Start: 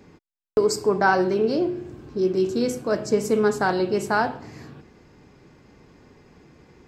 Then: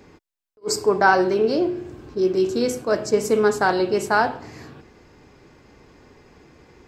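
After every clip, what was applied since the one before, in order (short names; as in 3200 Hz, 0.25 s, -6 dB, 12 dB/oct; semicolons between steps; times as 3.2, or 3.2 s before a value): bell 170 Hz -6 dB 1.3 oct; attack slew limiter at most 550 dB/s; gain +3.5 dB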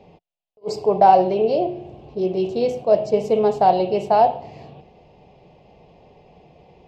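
EQ curve 110 Hz 0 dB, 170 Hz +8 dB, 280 Hz -6 dB, 710 Hz +13 dB, 1500 Hz -17 dB, 2800 Hz +5 dB, 8900 Hz -19 dB; gain -2.5 dB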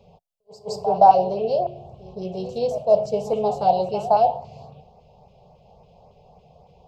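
fixed phaser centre 760 Hz, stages 4; LFO notch saw up 3.6 Hz 670–3800 Hz; reverse echo 0.168 s -14.5 dB; gain +1 dB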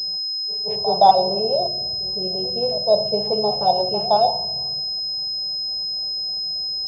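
reverb RT60 1.3 s, pre-delay 3 ms, DRR 13 dB; pulse-width modulation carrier 5100 Hz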